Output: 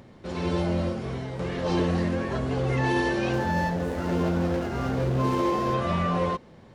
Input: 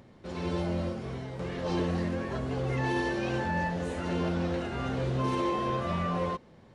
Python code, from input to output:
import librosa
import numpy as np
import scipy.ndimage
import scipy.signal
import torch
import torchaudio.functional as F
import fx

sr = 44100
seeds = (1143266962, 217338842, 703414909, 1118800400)

y = fx.median_filter(x, sr, points=15, at=(3.33, 5.74))
y = y * 10.0 ** (5.0 / 20.0)